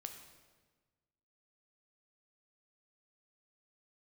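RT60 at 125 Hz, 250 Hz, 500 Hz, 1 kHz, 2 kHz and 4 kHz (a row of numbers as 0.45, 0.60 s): 1.7, 1.6, 1.4, 1.3, 1.2, 1.1 s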